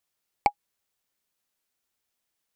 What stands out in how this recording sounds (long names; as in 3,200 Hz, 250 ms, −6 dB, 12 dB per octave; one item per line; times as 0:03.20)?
background noise floor −82 dBFS
spectral slope −4.0 dB per octave